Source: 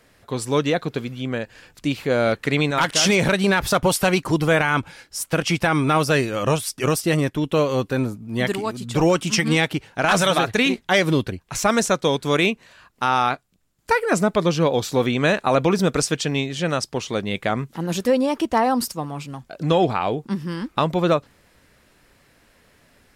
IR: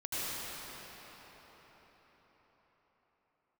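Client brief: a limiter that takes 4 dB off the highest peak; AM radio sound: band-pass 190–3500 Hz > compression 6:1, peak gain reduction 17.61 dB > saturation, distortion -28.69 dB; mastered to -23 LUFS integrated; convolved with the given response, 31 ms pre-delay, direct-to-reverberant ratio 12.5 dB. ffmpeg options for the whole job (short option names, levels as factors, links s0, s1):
-filter_complex "[0:a]alimiter=limit=0.299:level=0:latency=1,asplit=2[s0][s1];[1:a]atrim=start_sample=2205,adelay=31[s2];[s1][s2]afir=irnorm=-1:irlink=0,volume=0.112[s3];[s0][s3]amix=inputs=2:normalize=0,highpass=190,lowpass=3500,acompressor=threshold=0.02:ratio=6,asoftclip=threshold=0.1,volume=5.62"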